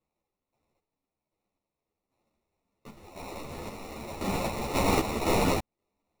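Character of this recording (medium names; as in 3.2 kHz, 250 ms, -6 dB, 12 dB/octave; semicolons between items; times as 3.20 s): aliases and images of a low sample rate 1.6 kHz, jitter 0%; random-step tremolo 3.8 Hz, depth 70%; a shimmering, thickened sound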